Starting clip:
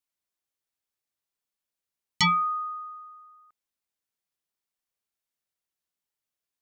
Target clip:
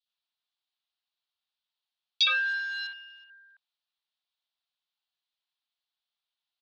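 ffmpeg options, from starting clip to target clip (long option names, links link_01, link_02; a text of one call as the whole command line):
ffmpeg -i in.wav -filter_complex "[0:a]asplit=2[link_01][link_02];[link_02]alimiter=level_in=0.5dB:limit=-24dB:level=0:latency=1:release=434,volume=-0.5dB,volume=1dB[link_03];[link_01][link_03]amix=inputs=2:normalize=0,asettb=1/sr,asplit=3[link_04][link_05][link_06];[link_04]atrim=end=2.254[link_07];[link_05]atrim=start=2.25:end=3.24,asetpts=PTS-STARTPTS,afade=type=in:duration=0.004:curve=qsin,afade=type=out:start_time=0.986:duration=0.004:curve=qsin,acrusher=bits=6:dc=4:mix=0:aa=0.000001[link_08];[link_06]atrim=start=3.236[link_09];[link_07][link_08]acrossfade=duration=0.004:curve1=hsin:curve2=qsin[link_10];[link_10][link_09]acrossfade=duration=0.004:curve1=qsin:curve2=hsin,acrossover=split=2600[link_11][link_12];[link_11]adelay=60[link_13];[link_13][link_12]amix=inputs=2:normalize=0,highpass=frequency=300:width_type=q:width=0.5412,highpass=frequency=300:width_type=q:width=1.307,lowpass=frequency=3500:width_type=q:width=0.5176,lowpass=frequency=3500:width_type=q:width=0.7071,lowpass=frequency=3500:width_type=q:width=1.932,afreqshift=350,aexciter=amount=8.3:drive=1:freq=3000,volume=-7dB" out.wav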